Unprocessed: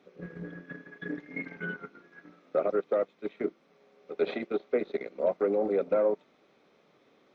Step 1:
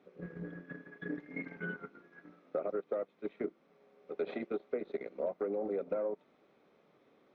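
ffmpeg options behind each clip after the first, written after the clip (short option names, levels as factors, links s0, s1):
-af "highshelf=f=3100:g=-10,acompressor=threshold=0.0355:ratio=6,volume=0.75"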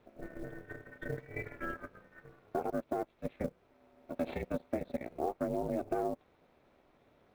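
-af "aeval=exprs='val(0)*sin(2*PI*160*n/s)':c=same,acrusher=bits=7:mode=log:mix=0:aa=0.000001,volume=1.5"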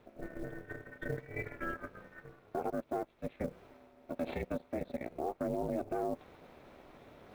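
-af "alimiter=level_in=1.41:limit=0.0631:level=0:latency=1:release=25,volume=0.708,areverse,acompressor=mode=upward:threshold=0.00501:ratio=2.5,areverse,volume=1.19"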